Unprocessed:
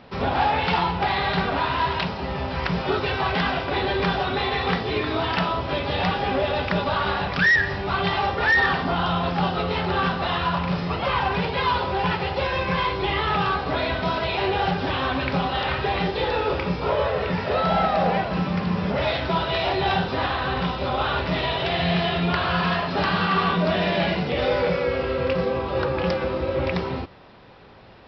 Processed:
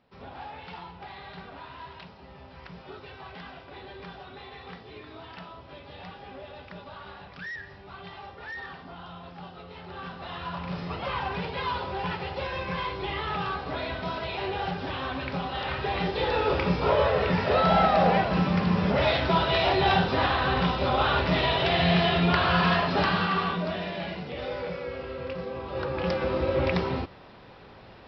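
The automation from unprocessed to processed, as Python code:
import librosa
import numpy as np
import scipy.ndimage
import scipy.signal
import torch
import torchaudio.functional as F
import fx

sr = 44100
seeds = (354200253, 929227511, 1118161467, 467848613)

y = fx.gain(x, sr, db=fx.line((9.7, -20.0), (10.82, -8.0), (15.45, -8.0), (16.68, 0.0), (22.89, 0.0), (23.93, -11.5), (25.47, -11.5), (26.37, -1.0)))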